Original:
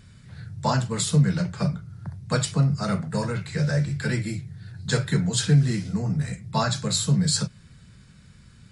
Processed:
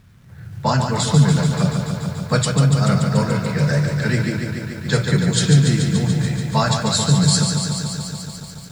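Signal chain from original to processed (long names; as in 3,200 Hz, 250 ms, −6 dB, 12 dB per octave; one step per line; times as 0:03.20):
low-pass that shuts in the quiet parts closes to 1,700 Hz, open at −18 dBFS
automatic gain control gain up to 5.5 dB
bit reduction 10 bits
feedback echo at a low word length 144 ms, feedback 80%, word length 8 bits, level −6 dB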